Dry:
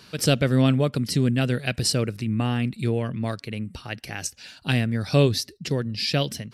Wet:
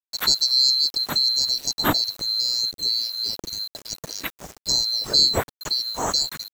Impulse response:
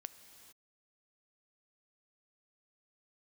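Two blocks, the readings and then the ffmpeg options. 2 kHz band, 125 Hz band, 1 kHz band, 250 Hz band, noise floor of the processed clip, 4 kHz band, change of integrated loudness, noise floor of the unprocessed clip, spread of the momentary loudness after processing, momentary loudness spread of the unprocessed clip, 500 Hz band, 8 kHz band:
-3.5 dB, -17.0 dB, +3.0 dB, -11.5 dB, under -85 dBFS, +12.5 dB, +4.0 dB, -52 dBFS, 14 LU, 13 LU, -8.5 dB, +4.5 dB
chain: -filter_complex "[0:a]afftfilt=real='real(if(lt(b,736),b+184*(1-2*mod(floor(b/184),2)),b),0)':imag='imag(if(lt(b,736),b+184*(1-2*mod(floor(b/184),2)),b),0)':win_size=2048:overlap=0.75,acrossover=split=780|1200[s0][s1][s2];[s0]dynaudnorm=f=460:g=7:m=3.55[s3];[s3][s1][s2]amix=inputs=3:normalize=0,aeval=exprs='val(0)*gte(abs(val(0)),0.0188)':c=same"

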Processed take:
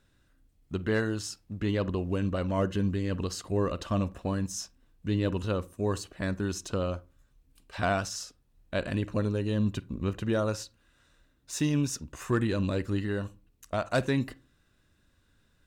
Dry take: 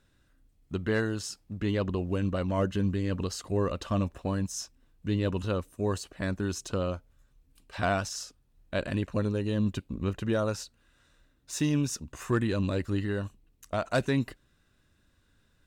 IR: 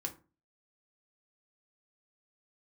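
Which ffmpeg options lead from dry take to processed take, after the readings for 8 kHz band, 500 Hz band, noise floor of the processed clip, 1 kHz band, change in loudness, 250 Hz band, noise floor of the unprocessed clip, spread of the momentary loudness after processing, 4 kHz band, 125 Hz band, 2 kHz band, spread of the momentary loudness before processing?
0.0 dB, 0.0 dB, -68 dBFS, 0.0 dB, 0.0 dB, 0.0 dB, -68 dBFS, 10 LU, 0.0 dB, 0.0 dB, 0.0 dB, 10 LU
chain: -filter_complex "[0:a]asplit=2[s0][s1];[1:a]atrim=start_sample=2205,lowpass=3700,adelay=46[s2];[s1][s2]afir=irnorm=-1:irlink=0,volume=0.126[s3];[s0][s3]amix=inputs=2:normalize=0"

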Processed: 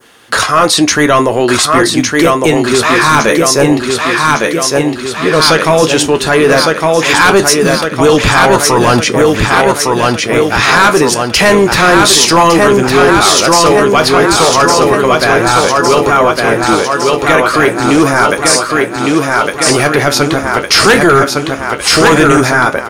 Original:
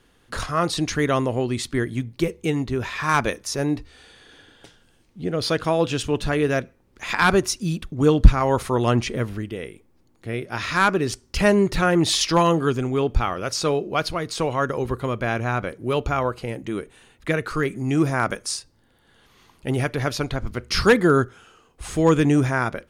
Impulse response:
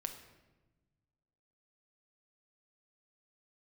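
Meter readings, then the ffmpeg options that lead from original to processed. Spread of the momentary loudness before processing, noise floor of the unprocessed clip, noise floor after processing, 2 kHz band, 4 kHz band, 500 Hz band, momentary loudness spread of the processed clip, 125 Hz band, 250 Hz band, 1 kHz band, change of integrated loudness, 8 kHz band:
12 LU, -60 dBFS, -19 dBFS, +16.5 dB, +17.5 dB, +14.5 dB, 5 LU, +7.5 dB, +12.0 dB, +16.5 dB, +14.0 dB, +19.5 dB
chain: -filter_complex "[0:a]highpass=f=600:p=1,flanger=delay=8.6:depth=6.6:regen=62:speed=0.12:shape=triangular,asplit=2[s0][s1];[s1]aecho=0:1:1158|2316|3474|4632|5790|6948|8106|9264:0.596|0.34|0.194|0.11|0.0629|0.0358|0.0204|0.0116[s2];[s0][s2]amix=inputs=2:normalize=0,adynamicequalizer=threshold=0.00631:dfrequency=3200:dqfactor=0.87:tfrequency=3200:tqfactor=0.87:attack=5:release=100:ratio=0.375:range=3.5:mode=cutabove:tftype=bell,apsyclip=22.4,volume=0.794"

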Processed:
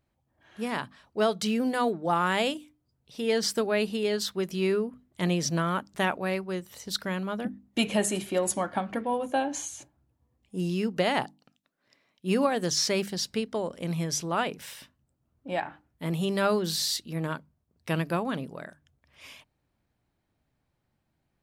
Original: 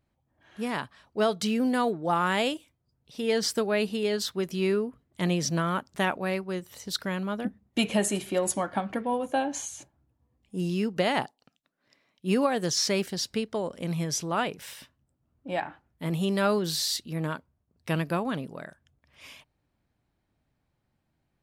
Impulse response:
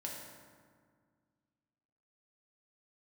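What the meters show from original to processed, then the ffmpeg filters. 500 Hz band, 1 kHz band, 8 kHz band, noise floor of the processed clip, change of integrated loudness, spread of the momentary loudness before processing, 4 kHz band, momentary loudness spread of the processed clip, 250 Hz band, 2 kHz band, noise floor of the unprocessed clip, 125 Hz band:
0.0 dB, 0.0 dB, 0.0 dB, -77 dBFS, 0.0 dB, 14 LU, 0.0 dB, 14 LU, -1.0 dB, 0.0 dB, -77 dBFS, -0.5 dB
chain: -af "bandreject=f=50:t=h:w=6,bandreject=f=100:t=h:w=6,bandreject=f=150:t=h:w=6,bandreject=f=200:t=h:w=6,bandreject=f=250:t=h:w=6,bandreject=f=300:t=h:w=6"

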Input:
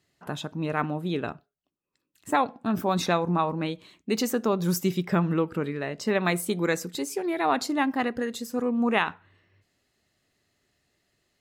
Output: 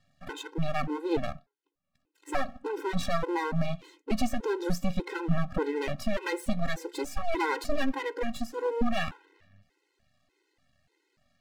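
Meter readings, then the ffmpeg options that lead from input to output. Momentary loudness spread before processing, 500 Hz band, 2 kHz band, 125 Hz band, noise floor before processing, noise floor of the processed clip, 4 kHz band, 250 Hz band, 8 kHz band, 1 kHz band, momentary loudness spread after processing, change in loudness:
7 LU, -4.0 dB, -4.5 dB, -4.0 dB, -81 dBFS, -80 dBFS, -5.0 dB, -5.5 dB, -8.5 dB, -6.0 dB, 6 LU, -5.0 dB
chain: -af "aemphasis=mode=reproduction:type=50fm,alimiter=limit=0.112:level=0:latency=1:release=190,aeval=exprs='max(val(0),0)':c=same,aphaser=in_gain=1:out_gain=1:delay=2.8:decay=0.2:speed=0.53:type=sinusoidal,afftfilt=real='re*gt(sin(2*PI*1.7*pts/sr)*(1-2*mod(floor(b*sr/1024/270),2)),0)':imag='im*gt(sin(2*PI*1.7*pts/sr)*(1-2*mod(floor(b*sr/1024/270),2)),0)':win_size=1024:overlap=0.75,volume=2.51"

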